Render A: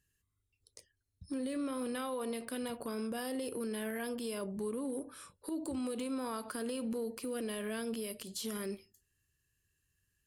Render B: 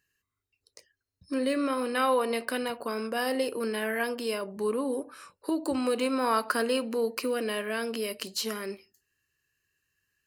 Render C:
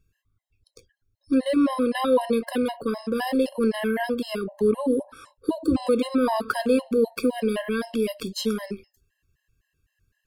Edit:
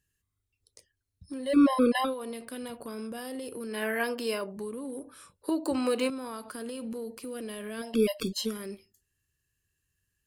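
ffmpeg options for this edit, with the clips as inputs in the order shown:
ffmpeg -i take0.wav -i take1.wav -i take2.wav -filter_complex "[2:a]asplit=2[link_01][link_02];[1:a]asplit=2[link_03][link_04];[0:a]asplit=5[link_05][link_06][link_07][link_08][link_09];[link_05]atrim=end=1.58[link_10];[link_01]atrim=start=1.42:end=2.14[link_11];[link_06]atrim=start=1.98:end=3.83[link_12];[link_03]atrim=start=3.67:end=4.66[link_13];[link_07]atrim=start=4.5:end=5.482[link_14];[link_04]atrim=start=5.478:end=6.102[link_15];[link_08]atrim=start=6.098:end=8[link_16];[link_02]atrim=start=7.76:end=8.56[link_17];[link_09]atrim=start=8.32[link_18];[link_10][link_11]acrossfade=duration=0.16:curve1=tri:curve2=tri[link_19];[link_19][link_12]acrossfade=duration=0.16:curve1=tri:curve2=tri[link_20];[link_20][link_13]acrossfade=duration=0.16:curve1=tri:curve2=tri[link_21];[link_21][link_14]acrossfade=duration=0.16:curve1=tri:curve2=tri[link_22];[link_22][link_15]acrossfade=duration=0.004:curve1=hsin:curve2=hsin[link_23];[link_23][link_16]acrossfade=duration=0.004:curve1=hsin:curve2=hsin[link_24];[link_24][link_17]acrossfade=duration=0.24:curve1=tri:curve2=tri[link_25];[link_25][link_18]acrossfade=duration=0.24:curve1=tri:curve2=tri" out.wav

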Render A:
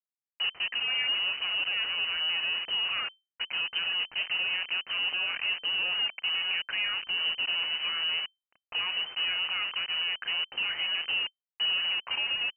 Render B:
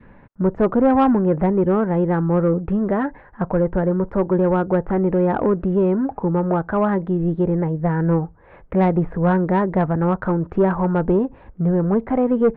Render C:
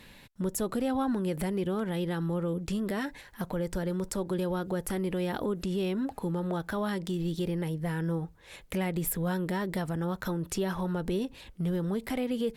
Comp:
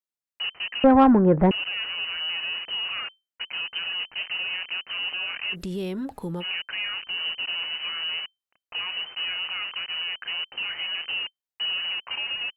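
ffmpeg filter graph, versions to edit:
ffmpeg -i take0.wav -i take1.wav -i take2.wav -filter_complex "[0:a]asplit=3[link_01][link_02][link_03];[link_01]atrim=end=0.842[link_04];[1:a]atrim=start=0.838:end=1.512[link_05];[link_02]atrim=start=1.508:end=5.56[link_06];[2:a]atrim=start=5.52:end=6.44[link_07];[link_03]atrim=start=6.4[link_08];[link_04][link_05]acrossfade=duration=0.004:curve1=hsin:curve2=hsin[link_09];[link_09][link_06]acrossfade=duration=0.004:curve1=hsin:curve2=hsin[link_10];[link_10][link_07]acrossfade=duration=0.04:curve1=tri:curve2=tri[link_11];[link_11][link_08]acrossfade=duration=0.04:curve1=tri:curve2=tri" out.wav

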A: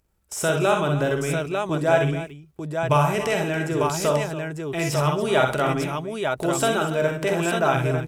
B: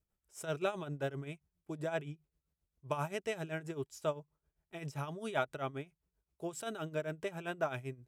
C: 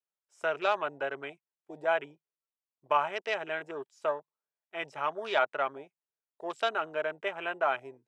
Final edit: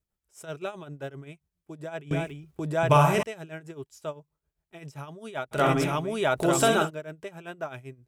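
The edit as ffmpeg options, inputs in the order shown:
ffmpeg -i take0.wav -i take1.wav -filter_complex "[0:a]asplit=2[link_01][link_02];[1:a]asplit=3[link_03][link_04][link_05];[link_03]atrim=end=2.112[link_06];[link_01]atrim=start=2.108:end=3.232[link_07];[link_04]atrim=start=3.228:end=5.61[link_08];[link_02]atrim=start=5.51:end=6.91[link_09];[link_05]atrim=start=6.81[link_10];[link_06][link_07]acrossfade=duration=0.004:curve1=hsin:curve2=hsin[link_11];[link_11][link_08]acrossfade=duration=0.004:curve1=hsin:curve2=hsin[link_12];[link_12][link_09]acrossfade=duration=0.1:curve1=tri:curve2=tri[link_13];[link_13][link_10]acrossfade=duration=0.1:curve1=tri:curve2=tri" out.wav

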